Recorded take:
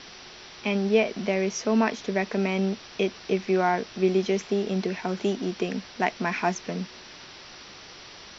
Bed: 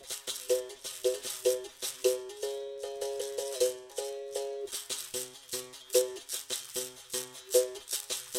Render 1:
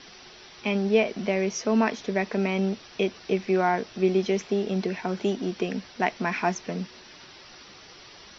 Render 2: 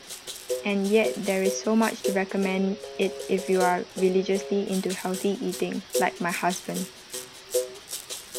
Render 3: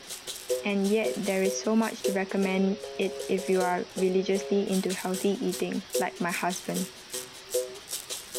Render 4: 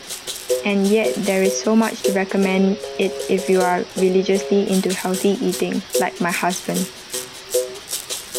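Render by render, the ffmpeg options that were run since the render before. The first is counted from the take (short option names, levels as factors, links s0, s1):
-af "afftdn=nr=6:nf=-46"
-filter_complex "[1:a]volume=0.944[s0];[0:a][s0]amix=inputs=2:normalize=0"
-af "alimiter=limit=0.158:level=0:latency=1:release=132"
-af "volume=2.82"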